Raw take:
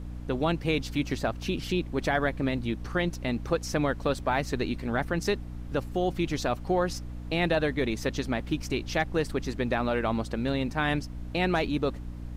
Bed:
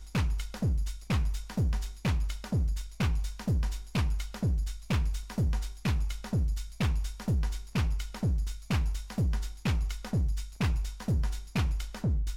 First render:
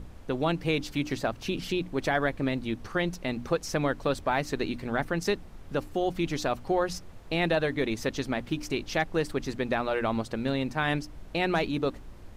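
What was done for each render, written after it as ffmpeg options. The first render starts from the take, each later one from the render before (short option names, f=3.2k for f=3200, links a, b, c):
-af "bandreject=f=60:t=h:w=6,bandreject=f=120:t=h:w=6,bandreject=f=180:t=h:w=6,bandreject=f=240:t=h:w=6,bandreject=f=300:t=h:w=6"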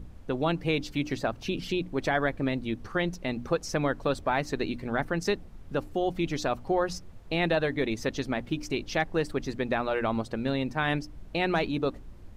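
-af "afftdn=nr=6:nf=-46"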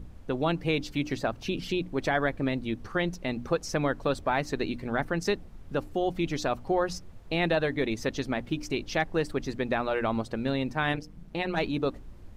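-filter_complex "[0:a]asplit=3[a][b][c];[a]afade=t=out:st=10.92:d=0.02[d];[b]tremolo=f=170:d=0.889,afade=t=in:st=10.92:d=0.02,afade=t=out:st=11.56:d=0.02[e];[c]afade=t=in:st=11.56:d=0.02[f];[d][e][f]amix=inputs=3:normalize=0"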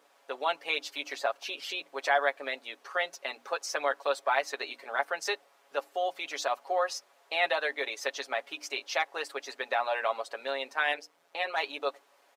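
-af "highpass=f=570:w=0.5412,highpass=f=570:w=1.3066,aecho=1:1:7.2:0.68"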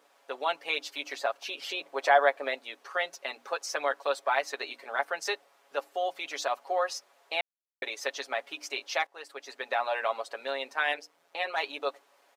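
-filter_complex "[0:a]asettb=1/sr,asplit=3[a][b][c];[a]atrim=end=1.614[d];[b]atrim=start=1.61:end=2.55,asetpts=PTS-STARTPTS,afade=t=in:d=0.004:c=qsin,afade=t=out:st=0.936:d=0.004:c=qsin,equalizer=f=630:w=0.63:g=5.5[e];[c]atrim=start=2.546[f];[d][e]acrossfade=d=0.004:c1=hsin:c2=qsin[g];[g][f]acrossfade=d=0.004:c1=qsin:c2=hsin,asplit=4[h][i][j][k];[h]atrim=end=7.41,asetpts=PTS-STARTPTS,afade=t=out:st=7.406:d=0.004:c=hsin[l];[i]atrim=start=7.41:end=7.82,asetpts=PTS-STARTPTS,volume=0[m];[j]atrim=start=7.82:end=9.07,asetpts=PTS-STARTPTS,afade=t=in:d=0.004:c=hsin,afade=t=out:st=1.246:d=0.004:c=hsin:silence=0.188365[n];[k]atrim=start=9.07,asetpts=PTS-STARTPTS,afade=t=in:d=0.7:silence=0.188365[o];[l][m][n][o]concat=n=4:v=0:a=1"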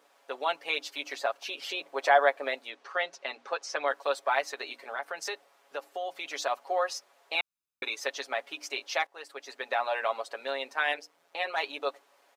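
-filter_complex "[0:a]asettb=1/sr,asplit=3[a][b][c];[a]atrim=end=2.704[d];[b]atrim=start=2.7:end=3.88,asetpts=PTS-STARTPTS,afade=t=in:d=0.004:c=qsin,afade=t=out:st=1.176:d=0.004:c=qsin,lowpass=5.7k[e];[c]atrim=start=3.876[f];[d][e]acrossfade=d=0.004:c1=hsin:c2=qsin[g];[g][f]acrossfade=d=0.004:c1=qsin:c2=hsin,asettb=1/sr,asplit=3[h][i][j];[h]atrim=end=4.494[k];[i]atrim=start=4.49:end=6.29,asetpts=PTS-STARTPTS,afade=t=in:d=0.004:c=qsin,afade=t=out:st=1.796:d=0.004:c=qsin,acompressor=threshold=-32dB:ratio=2.5:attack=3.2:release=140:knee=1:detection=peak[l];[j]atrim=start=6.286[m];[k][l]acrossfade=d=0.004:c1=hsin:c2=qsin[n];[n][m]acrossfade=d=0.004:c1=qsin:c2=hsin,asettb=1/sr,asplit=3[o][p][q];[o]atrim=end=7.354[r];[p]atrim=start=7.35:end=7.96,asetpts=PTS-STARTPTS,afade=t=in:d=0.004:c=qsin,afade=t=out:st=0.606:d=0.004:c=qsin,aecho=1:1:0.8:0.69,atrim=end_sample=26901[s];[q]atrim=start=7.956[t];[r][s]acrossfade=d=0.004:c1=hsin:c2=qsin[u];[u][t]acrossfade=d=0.004:c1=qsin:c2=hsin"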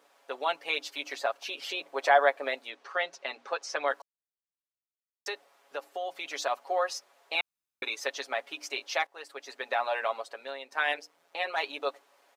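-filter_complex "[0:a]asplit=4[a][b][c][d];[a]atrim=end=4.02,asetpts=PTS-STARTPTS,afade=t=out:st=4.016:d=0.004:c=hsin[e];[b]atrim=start=4.02:end=5.26,asetpts=PTS-STARTPTS,volume=0[f];[c]atrim=start=5.26:end=10.72,asetpts=PTS-STARTPTS,afade=t=in:d=0.004:c=hsin,afade=t=out:st=4.71:d=0.75:silence=0.316228[g];[d]atrim=start=10.72,asetpts=PTS-STARTPTS,afade=t=in:d=0.004:c=hsin:silence=0.316228[h];[e][f][g][h]concat=n=4:v=0:a=1"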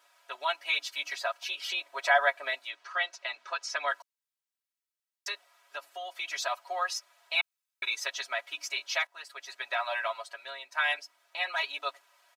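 -af "highpass=1k,aecho=1:1:3.1:0.87"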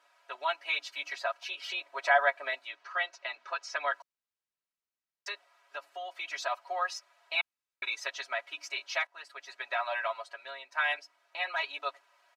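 -af "aemphasis=mode=reproduction:type=50kf,bandreject=f=3.4k:w=17"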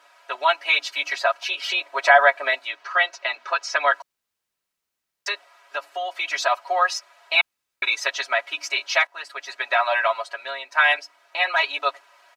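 -af "volume=12dB,alimiter=limit=-3dB:level=0:latency=1"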